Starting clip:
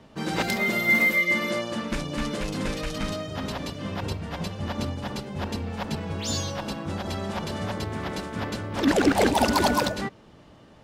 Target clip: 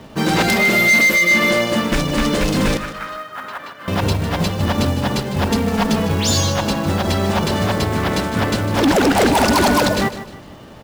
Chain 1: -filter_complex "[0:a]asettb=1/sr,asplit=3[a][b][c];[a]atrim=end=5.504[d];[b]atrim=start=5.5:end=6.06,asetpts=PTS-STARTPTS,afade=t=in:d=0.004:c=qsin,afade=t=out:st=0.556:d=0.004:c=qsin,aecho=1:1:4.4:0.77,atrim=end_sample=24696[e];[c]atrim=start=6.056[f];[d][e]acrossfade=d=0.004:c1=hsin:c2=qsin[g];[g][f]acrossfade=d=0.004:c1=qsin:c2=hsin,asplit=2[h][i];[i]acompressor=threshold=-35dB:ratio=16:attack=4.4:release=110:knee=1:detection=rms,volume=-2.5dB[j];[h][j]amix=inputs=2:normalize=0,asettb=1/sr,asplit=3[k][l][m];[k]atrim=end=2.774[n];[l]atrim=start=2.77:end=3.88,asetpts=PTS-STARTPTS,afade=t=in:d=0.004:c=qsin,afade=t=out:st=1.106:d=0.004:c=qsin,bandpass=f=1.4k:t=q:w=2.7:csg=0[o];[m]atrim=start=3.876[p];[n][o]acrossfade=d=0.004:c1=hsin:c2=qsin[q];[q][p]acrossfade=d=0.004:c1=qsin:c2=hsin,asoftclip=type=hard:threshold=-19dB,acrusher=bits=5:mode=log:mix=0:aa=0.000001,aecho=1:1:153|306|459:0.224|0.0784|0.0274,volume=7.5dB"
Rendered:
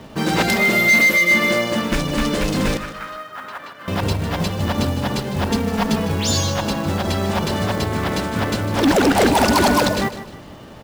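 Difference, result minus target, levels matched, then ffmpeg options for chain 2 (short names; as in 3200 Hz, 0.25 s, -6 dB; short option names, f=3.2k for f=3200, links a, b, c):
compressor: peak gain reduction +11 dB
-filter_complex "[0:a]asettb=1/sr,asplit=3[a][b][c];[a]atrim=end=5.504[d];[b]atrim=start=5.5:end=6.06,asetpts=PTS-STARTPTS,afade=t=in:d=0.004:c=qsin,afade=t=out:st=0.556:d=0.004:c=qsin,aecho=1:1:4.4:0.77,atrim=end_sample=24696[e];[c]atrim=start=6.056[f];[d][e]acrossfade=d=0.004:c1=hsin:c2=qsin[g];[g][f]acrossfade=d=0.004:c1=qsin:c2=hsin,asplit=2[h][i];[i]acompressor=threshold=-23dB:ratio=16:attack=4.4:release=110:knee=1:detection=rms,volume=-2.5dB[j];[h][j]amix=inputs=2:normalize=0,asettb=1/sr,asplit=3[k][l][m];[k]atrim=end=2.774[n];[l]atrim=start=2.77:end=3.88,asetpts=PTS-STARTPTS,afade=t=in:d=0.004:c=qsin,afade=t=out:st=1.106:d=0.004:c=qsin,bandpass=f=1.4k:t=q:w=2.7:csg=0[o];[m]atrim=start=3.876[p];[n][o]acrossfade=d=0.004:c1=hsin:c2=qsin[q];[q][p]acrossfade=d=0.004:c1=qsin:c2=hsin,asoftclip=type=hard:threshold=-19dB,acrusher=bits=5:mode=log:mix=0:aa=0.000001,aecho=1:1:153|306|459:0.224|0.0784|0.0274,volume=7.5dB"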